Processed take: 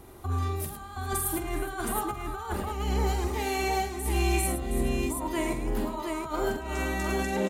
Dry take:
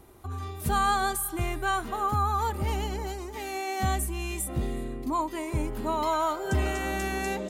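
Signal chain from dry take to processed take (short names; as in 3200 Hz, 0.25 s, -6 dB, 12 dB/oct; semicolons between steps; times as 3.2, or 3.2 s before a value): negative-ratio compressor -32 dBFS, ratio -0.5; tapped delay 46/107/413/718 ms -6.5/-8.5/-18/-4 dB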